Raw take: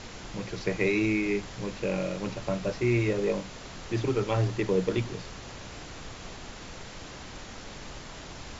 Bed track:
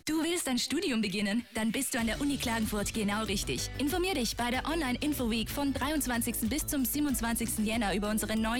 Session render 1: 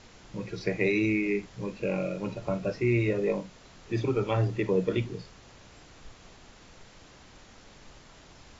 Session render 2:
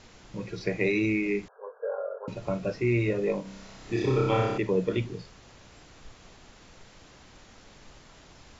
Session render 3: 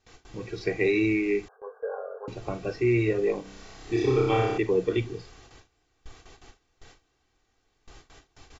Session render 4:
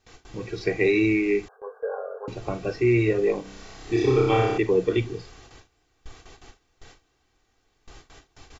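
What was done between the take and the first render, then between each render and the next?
noise print and reduce 10 dB
1.48–2.28 brick-wall FIR band-pass 410–1700 Hz; 3.42–4.58 flutter echo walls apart 5.3 m, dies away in 1.1 s
gate with hold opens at -40 dBFS; comb 2.6 ms, depth 57%
gain +3 dB

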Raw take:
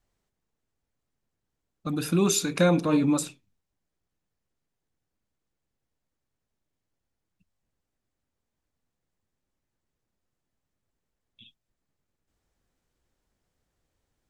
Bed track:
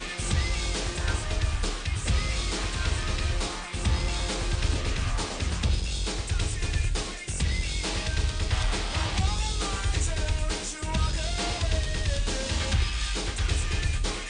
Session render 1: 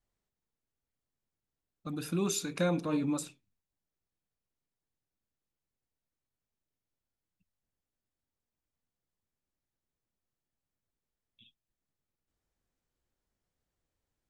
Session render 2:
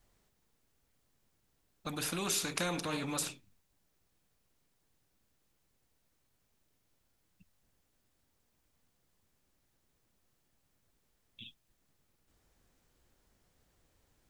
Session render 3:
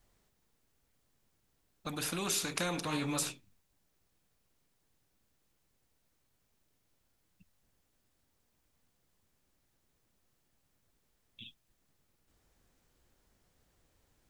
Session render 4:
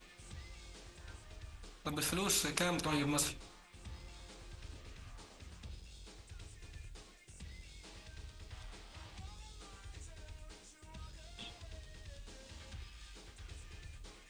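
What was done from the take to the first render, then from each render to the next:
gain -8.5 dB
spectral compressor 2:1
2.85–3.32 doubler 14 ms -4.5 dB
add bed track -24.5 dB

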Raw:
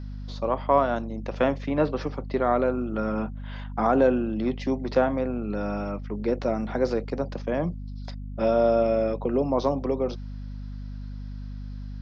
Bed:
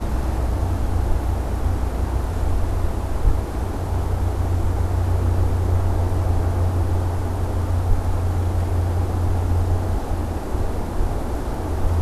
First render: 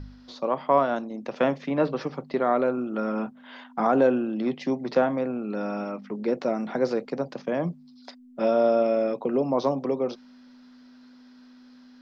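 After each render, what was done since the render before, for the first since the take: de-hum 50 Hz, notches 4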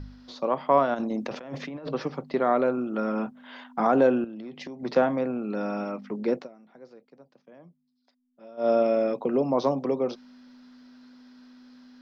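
0.94–1.89 negative-ratio compressor -34 dBFS; 4.24–4.83 compressor 16:1, threshold -35 dBFS; 6.35–8.7 dip -24 dB, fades 0.13 s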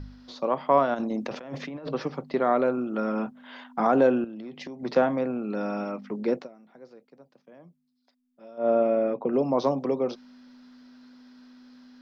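8.58–9.33 Bessel low-pass 2000 Hz, order 4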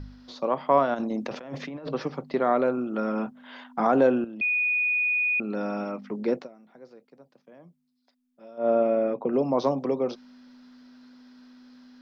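4.41–5.4 bleep 2470 Hz -21.5 dBFS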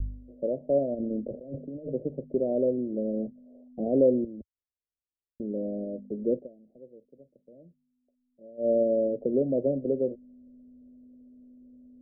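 steep low-pass 610 Hz 72 dB/oct; resonant low shelf 110 Hz +9.5 dB, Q 1.5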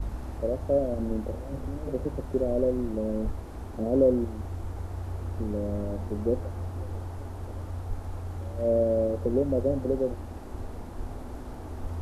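add bed -14.5 dB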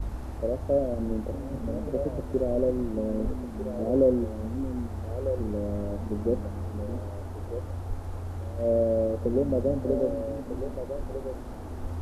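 delay with a stepping band-pass 0.624 s, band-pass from 200 Hz, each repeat 1.4 oct, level -5 dB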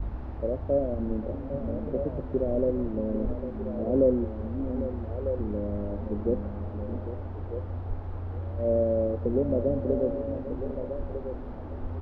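air absorption 330 m; echo 0.8 s -12.5 dB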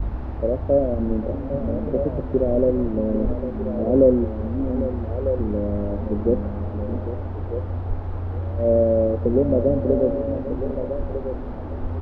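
gain +7 dB

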